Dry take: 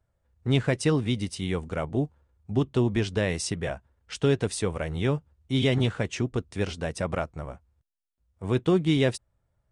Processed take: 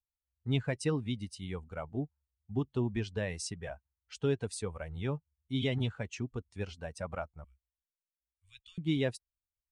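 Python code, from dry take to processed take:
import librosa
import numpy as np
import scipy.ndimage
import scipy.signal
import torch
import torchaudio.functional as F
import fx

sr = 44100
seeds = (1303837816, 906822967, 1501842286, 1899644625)

y = fx.bin_expand(x, sr, power=1.5)
y = fx.cheby2_bandstop(y, sr, low_hz=180.0, high_hz=730.0, order=4, stop_db=70, at=(7.44, 8.78))
y = F.gain(torch.from_numpy(y), -6.0).numpy()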